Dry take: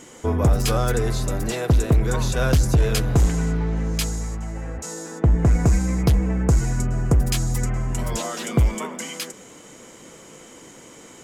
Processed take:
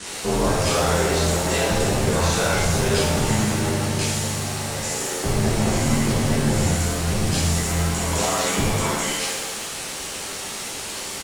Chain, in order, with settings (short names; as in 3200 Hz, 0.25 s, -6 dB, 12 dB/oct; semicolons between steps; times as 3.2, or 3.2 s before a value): HPF 230 Hz 6 dB/oct; limiter -18 dBFS, peak gain reduction 9.5 dB; requantised 6-bit, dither triangular; downsampling 22050 Hz; ring modulator 43 Hz; shimmer reverb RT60 1 s, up +7 st, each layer -8 dB, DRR -9.5 dB